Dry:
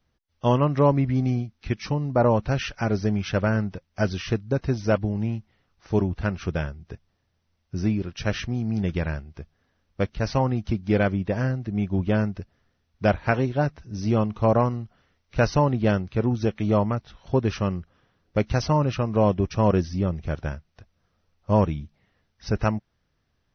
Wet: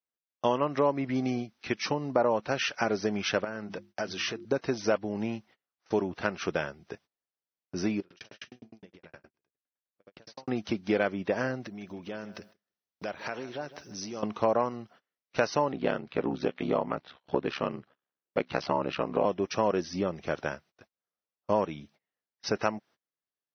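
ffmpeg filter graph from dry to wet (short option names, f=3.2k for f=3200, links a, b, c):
-filter_complex "[0:a]asettb=1/sr,asplit=3[a][b][c];[a]atrim=end=3.444[d];[b]atrim=start=3.44:end=4.45,asetpts=PTS-STARTPTS,afade=t=in:d=0.004:c=qsin,afade=t=out:st=1.006:d=0.004:c=qsin,bandreject=f=50:t=h:w=6,bandreject=f=100:t=h:w=6,bandreject=f=150:t=h:w=6,bandreject=f=200:t=h:w=6,bandreject=f=250:t=h:w=6,bandreject=f=300:t=h:w=6,bandreject=f=350:t=h:w=6,acompressor=threshold=-29dB:ratio=12:attack=3.2:release=140:knee=1:detection=peak[e];[c]atrim=start=4.446[f];[d][e]acrossfade=d=0.004:c1=hsin:c2=qsin[g];[g][f]acrossfade=d=0.004:c1=qsin:c2=hsin,asettb=1/sr,asplit=3[h][i][j];[h]atrim=end=8.004[k];[i]atrim=start=8:end=10.48,asetpts=PTS-STARTPTS,afade=t=in:d=0.004:c=qsin,afade=t=out:st=2.476:d=0.004:c=qsin,acompressor=threshold=-34dB:ratio=16:attack=3.2:release=140:knee=1:detection=peak,aecho=1:1:75|150|225:0.447|0.0893|0.0179,atrim=end_sample=109368,aeval=exprs='val(0)*pow(10,-34*if(lt(mod(9.7*n/s,1),2*abs(9.7)/1000),1-mod(9.7*n/s,1)/(2*abs(9.7)/1000),(mod(9.7*n/s,1)-2*abs(9.7)/1000)/(1-2*abs(9.7)/1000))/20)':c=same[l];[j]atrim=start=10.476[m];[k][l]acrossfade=d=0.004:c1=hsin:c2=qsin[n];[n][m]acrossfade=d=0.004:c1=qsin:c2=hsin,asettb=1/sr,asplit=3[o][p][q];[o]atrim=end=11.654[r];[p]atrim=start=11.65:end=14.23,asetpts=PTS-STARTPTS,afade=t=in:d=0.004:c=qsin,afade=t=out:st=2.576:d=0.004:c=qsin,aemphasis=mode=production:type=50kf,acompressor=threshold=-33dB:ratio=10:attack=3.2:release=140:knee=1:detection=peak,aecho=1:1:156|312|468:0.168|0.0504|0.0151,atrim=end_sample=113778[s];[q]atrim=start=14.226[t];[r][s]acrossfade=d=0.004:c1=hsin:c2=qsin[u];[u][t]acrossfade=d=0.004:c1=qsin:c2=hsin,asettb=1/sr,asplit=3[v][w][x];[v]atrim=end=15.724[y];[w]atrim=start=15.72:end=19.25,asetpts=PTS-STARTPTS,afade=t=in:d=0.004:c=qsin,afade=t=out:st=3.526:d=0.004:c=qsin,lowpass=f=4.4k:w=0.5412,lowpass=f=4.4k:w=1.3066,aeval=exprs='val(0)*sin(2*PI*34*n/s)':c=same[z];[x]atrim=start=19.246[aa];[y][z]acrossfade=d=0.004:c1=hsin:c2=qsin[ab];[ab][aa]acrossfade=d=0.004:c1=qsin:c2=hsin,agate=range=-27dB:threshold=-48dB:ratio=16:detection=peak,highpass=330,acompressor=threshold=-30dB:ratio=2.5,volume=4.5dB"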